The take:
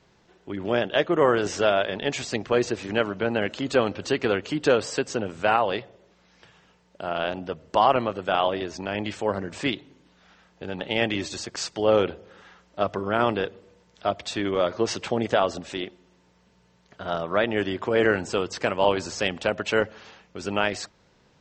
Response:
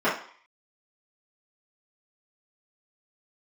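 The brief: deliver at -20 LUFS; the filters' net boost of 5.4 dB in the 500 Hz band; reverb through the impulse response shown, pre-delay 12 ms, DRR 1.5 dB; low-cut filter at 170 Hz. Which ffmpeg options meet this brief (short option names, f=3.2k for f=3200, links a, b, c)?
-filter_complex "[0:a]highpass=170,equalizer=f=500:t=o:g=6.5,asplit=2[a][b];[1:a]atrim=start_sample=2205,adelay=12[c];[b][c]afir=irnorm=-1:irlink=0,volume=-18.5dB[d];[a][d]amix=inputs=2:normalize=0,volume=-1.5dB"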